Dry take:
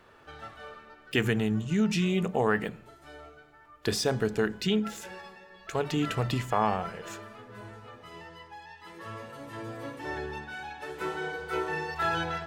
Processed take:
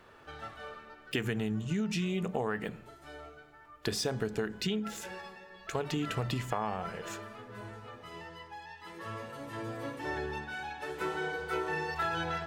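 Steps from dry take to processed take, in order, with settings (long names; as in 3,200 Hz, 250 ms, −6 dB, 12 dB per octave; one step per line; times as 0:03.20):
downward compressor, threshold −29 dBFS, peak gain reduction 9 dB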